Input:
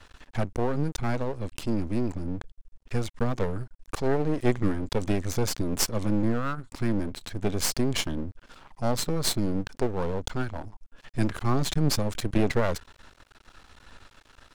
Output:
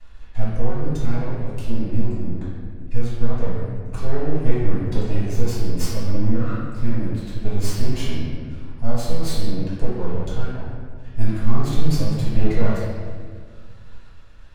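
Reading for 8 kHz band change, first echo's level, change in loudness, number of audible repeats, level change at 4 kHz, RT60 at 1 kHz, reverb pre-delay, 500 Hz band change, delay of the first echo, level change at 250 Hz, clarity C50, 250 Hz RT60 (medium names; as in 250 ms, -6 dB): -5.5 dB, no echo, +2.5 dB, no echo, -3.5 dB, 1.6 s, 3 ms, +0.5 dB, no echo, +2.0 dB, -1.5 dB, 2.3 s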